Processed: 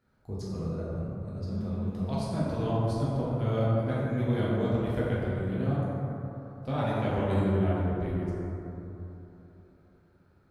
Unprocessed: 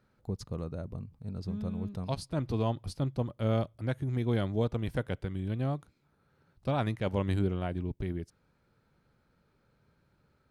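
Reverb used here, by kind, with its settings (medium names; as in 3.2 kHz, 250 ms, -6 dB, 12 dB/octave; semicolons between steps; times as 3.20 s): plate-style reverb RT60 3.4 s, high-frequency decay 0.3×, DRR -8.5 dB; trim -6 dB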